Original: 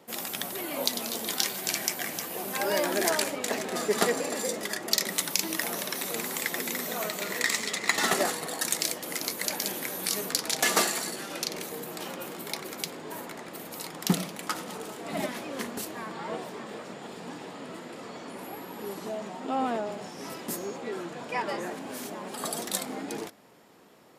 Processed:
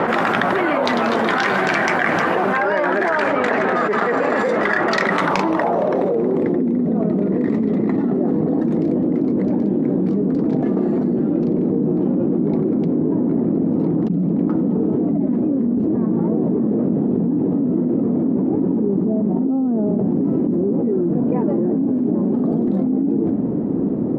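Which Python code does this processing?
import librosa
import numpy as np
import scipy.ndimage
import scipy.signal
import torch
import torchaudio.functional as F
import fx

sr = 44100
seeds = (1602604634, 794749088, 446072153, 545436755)

y = fx.rattle_buzz(x, sr, strikes_db=-22.0, level_db=-15.0)
y = fx.filter_sweep_lowpass(y, sr, from_hz=1500.0, to_hz=270.0, start_s=5.09, end_s=6.67, q=2.0)
y = fx.env_flatten(y, sr, amount_pct=100)
y = y * 10.0 ** (-2.5 / 20.0)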